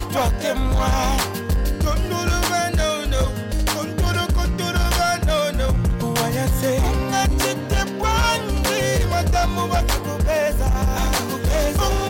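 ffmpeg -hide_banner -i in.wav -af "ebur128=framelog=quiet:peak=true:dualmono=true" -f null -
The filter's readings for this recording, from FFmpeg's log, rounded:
Integrated loudness:
  I:         -17.7 LUFS
  Threshold: -27.7 LUFS
Loudness range:
  LRA:         1.2 LU
  Threshold: -37.6 LUFS
  LRA low:   -18.4 LUFS
  LRA high:  -17.2 LUFS
True peak:
  Peak:      -10.4 dBFS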